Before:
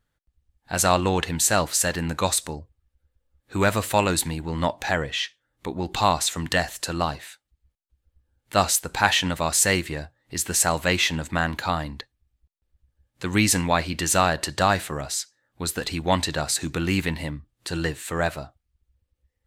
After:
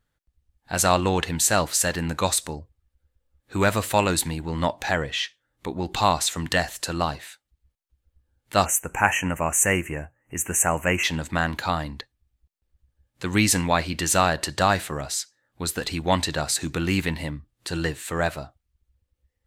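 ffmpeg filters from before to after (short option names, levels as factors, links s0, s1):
-filter_complex "[0:a]asplit=3[s0][s1][s2];[s0]afade=t=out:st=8.64:d=0.02[s3];[s1]asuperstop=centerf=4200:order=12:qfactor=1.3,afade=t=in:st=8.64:d=0.02,afade=t=out:st=11.03:d=0.02[s4];[s2]afade=t=in:st=11.03:d=0.02[s5];[s3][s4][s5]amix=inputs=3:normalize=0"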